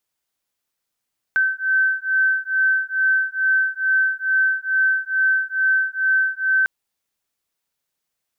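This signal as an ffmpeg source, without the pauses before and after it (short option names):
-f lavfi -i "aevalsrc='0.106*(sin(2*PI*1540*t)+sin(2*PI*1542.3*t))':d=5.3:s=44100"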